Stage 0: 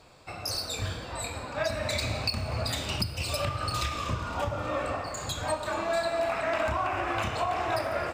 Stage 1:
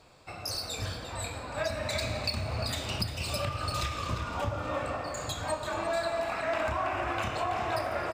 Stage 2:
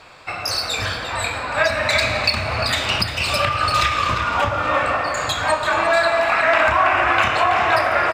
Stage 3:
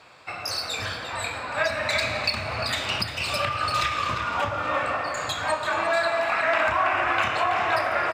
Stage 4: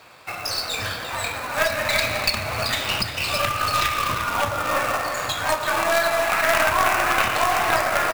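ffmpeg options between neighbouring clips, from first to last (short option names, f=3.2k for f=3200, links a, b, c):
-filter_complex "[0:a]asplit=2[a][b];[b]adelay=349.9,volume=-7dB,highshelf=f=4k:g=-7.87[c];[a][c]amix=inputs=2:normalize=0,volume=-2.5dB"
-af "equalizer=f=1.8k:t=o:w=2.7:g=13,volume=6dB"
-af "highpass=83,volume=-6.5dB"
-af "acrusher=bits=2:mode=log:mix=0:aa=0.000001,aeval=exprs='0.299*(cos(1*acos(clip(val(0)/0.299,-1,1)))-cos(1*PI/2))+0.075*(cos(2*acos(clip(val(0)/0.299,-1,1)))-cos(2*PI/2))':c=same,volume=2.5dB"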